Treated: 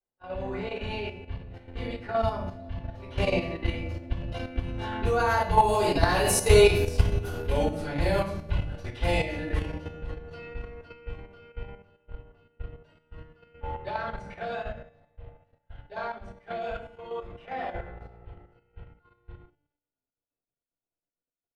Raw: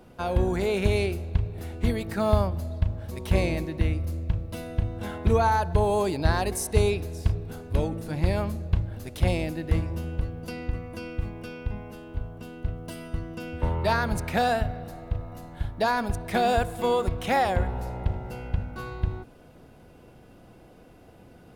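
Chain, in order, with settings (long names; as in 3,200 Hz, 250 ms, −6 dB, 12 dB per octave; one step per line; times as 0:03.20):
source passing by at 0:06.63, 16 m/s, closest 16 metres
rectangular room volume 65 cubic metres, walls mixed, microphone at 3.7 metres
low-pass that shuts in the quiet parts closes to 2,200 Hz, open at −7 dBFS
downward expander −27 dBFS
low-shelf EQ 180 Hz −11 dB
tuned comb filter 290 Hz, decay 0.89 s, mix 80%
in parallel at +1 dB: speech leveller within 3 dB 2 s
on the sum: parametric band 2,900 Hz +4.5 dB 0.44 octaves
hum removal 148.5 Hz, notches 3
output level in coarse steps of 9 dB
level +3.5 dB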